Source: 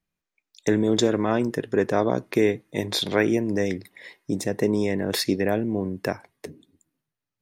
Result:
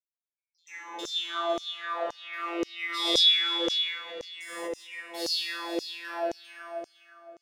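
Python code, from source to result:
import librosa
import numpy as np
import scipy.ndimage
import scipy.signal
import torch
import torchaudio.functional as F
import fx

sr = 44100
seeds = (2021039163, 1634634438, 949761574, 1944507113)

p1 = fx.bin_expand(x, sr, power=1.5)
p2 = fx.rider(p1, sr, range_db=10, speed_s=0.5)
p3 = p1 + (p2 * 10.0 ** (1.0 / 20.0))
p4 = scipy.signal.sosfilt(scipy.signal.butter(2, 49.0, 'highpass', fs=sr, output='sos'), p3)
p5 = fx.rev_spring(p4, sr, rt60_s=2.8, pass_ms=(50,), chirp_ms=80, drr_db=-6.5)
p6 = 10.0 ** (-11.0 / 20.0) * np.tanh(p5 / 10.0 ** (-11.0 / 20.0))
p7 = fx.dynamic_eq(p6, sr, hz=3200.0, q=2.3, threshold_db=-41.0, ratio=4.0, max_db=8)
p8 = fx.comb_fb(p7, sr, f0_hz=170.0, decay_s=1.8, harmonics='all', damping=0.0, mix_pct=100)
p9 = p8 + fx.echo_single(p8, sr, ms=507, db=-11.5, dry=0)
p10 = fx.filter_lfo_highpass(p9, sr, shape='saw_down', hz=1.9, low_hz=470.0, high_hz=6100.0, q=4.6)
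p11 = fx.pre_swell(p10, sr, db_per_s=47.0, at=(2.84, 4.9))
y = p11 * 10.0 ** (4.5 / 20.0)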